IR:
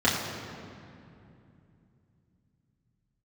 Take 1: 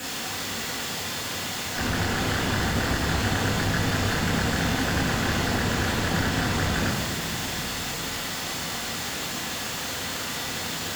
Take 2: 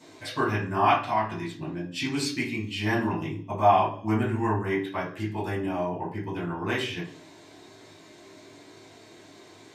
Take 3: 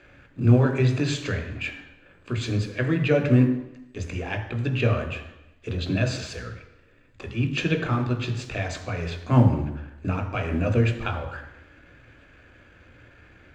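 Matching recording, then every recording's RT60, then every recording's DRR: 1; 2.7, 0.55, 0.85 seconds; −8.0, −8.0, 5.0 decibels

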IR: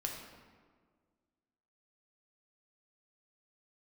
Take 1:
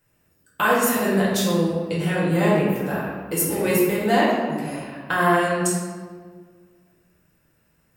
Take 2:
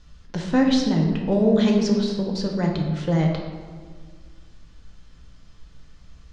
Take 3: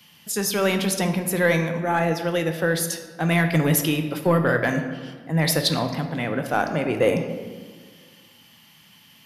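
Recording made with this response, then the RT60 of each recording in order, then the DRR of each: 2; 1.7, 1.7, 1.7 seconds; −6.5, 0.0, 6.0 decibels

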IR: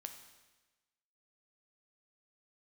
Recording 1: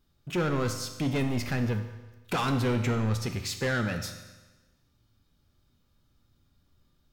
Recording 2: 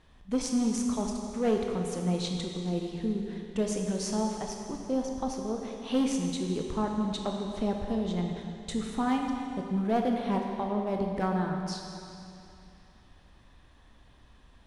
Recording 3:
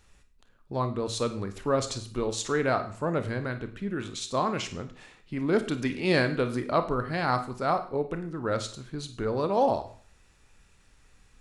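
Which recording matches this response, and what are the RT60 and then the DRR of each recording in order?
1; 1.2, 2.7, 0.45 seconds; 5.5, 1.5, 8.0 decibels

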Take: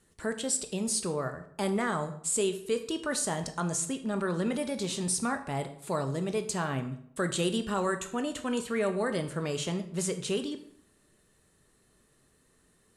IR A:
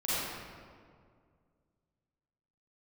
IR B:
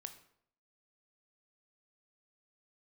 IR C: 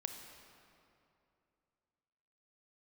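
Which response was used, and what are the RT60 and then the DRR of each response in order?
B; 2.1, 0.65, 2.7 seconds; −12.0, 7.5, 5.0 decibels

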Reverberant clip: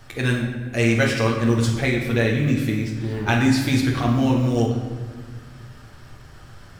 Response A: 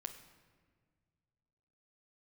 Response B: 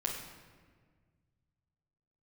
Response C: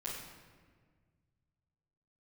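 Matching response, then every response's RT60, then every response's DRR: B; 1.7, 1.6, 1.6 seconds; 5.5, −3.0, −9.5 decibels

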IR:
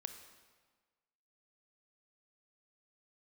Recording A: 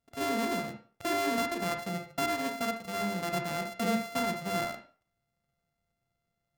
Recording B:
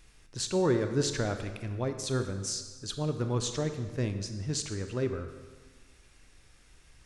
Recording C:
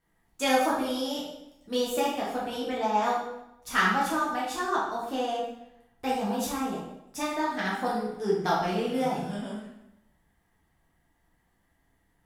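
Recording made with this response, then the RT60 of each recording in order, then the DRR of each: B; 0.40, 1.5, 0.85 seconds; 5.0, 7.0, −7.0 decibels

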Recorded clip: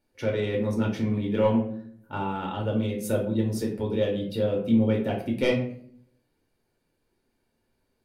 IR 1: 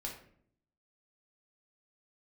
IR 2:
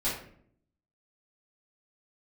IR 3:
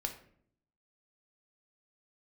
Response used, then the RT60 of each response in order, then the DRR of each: 1; 0.60, 0.60, 0.60 seconds; −1.0, −11.0, 4.5 decibels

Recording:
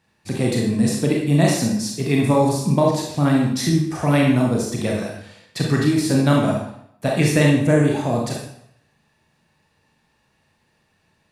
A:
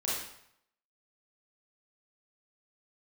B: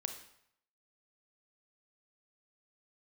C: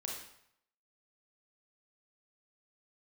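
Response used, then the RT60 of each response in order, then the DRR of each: C; 0.70, 0.70, 0.70 seconds; −7.5, 6.0, −2.0 decibels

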